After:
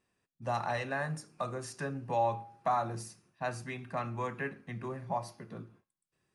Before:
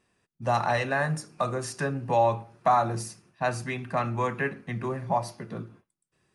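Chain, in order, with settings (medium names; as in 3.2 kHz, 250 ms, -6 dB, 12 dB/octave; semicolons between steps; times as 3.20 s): feedback comb 270 Hz, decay 0.59 s, harmonics all, mix 40%; trim -4 dB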